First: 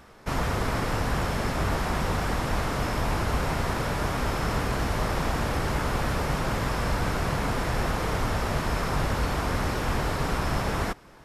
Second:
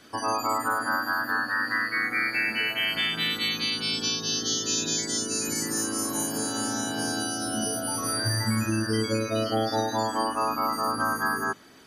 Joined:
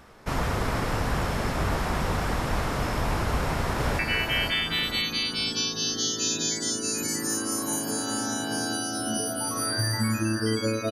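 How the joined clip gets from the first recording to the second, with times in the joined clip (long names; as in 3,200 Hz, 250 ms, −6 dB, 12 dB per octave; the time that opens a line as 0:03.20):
first
0:03.27–0:03.99: delay throw 510 ms, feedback 40%, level −5 dB
0:03.99: continue with second from 0:02.46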